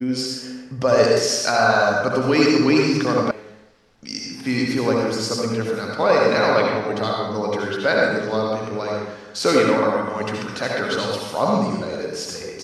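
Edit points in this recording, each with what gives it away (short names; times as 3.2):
3.31 sound cut off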